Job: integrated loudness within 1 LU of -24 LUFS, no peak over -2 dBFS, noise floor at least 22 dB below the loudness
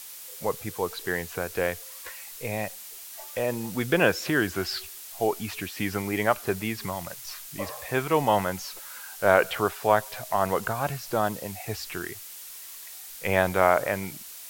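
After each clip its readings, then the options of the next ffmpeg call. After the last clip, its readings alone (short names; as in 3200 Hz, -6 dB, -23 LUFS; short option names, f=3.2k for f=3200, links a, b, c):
noise floor -43 dBFS; noise floor target -50 dBFS; loudness -27.5 LUFS; peak -3.0 dBFS; loudness target -24.0 LUFS
-> -af "afftdn=nr=7:nf=-43"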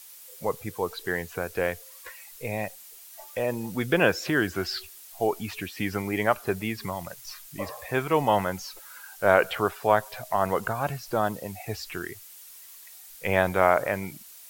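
noise floor -48 dBFS; noise floor target -50 dBFS
-> -af "afftdn=nr=6:nf=-48"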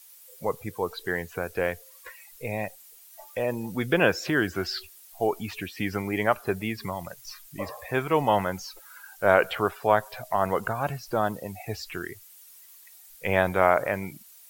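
noise floor -51 dBFS; loudness -27.5 LUFS; peak -3.0 dBFS; loudness target -24.0 LUFS
-> -af "volume=3.5dB,alimiter=limit=-2dB:level=0:latency=1"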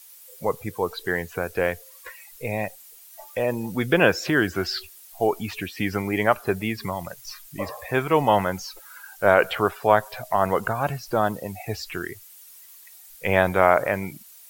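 loudness -24.0 LUFS; peak -2.0 dBFS; noise floor -48 dBFS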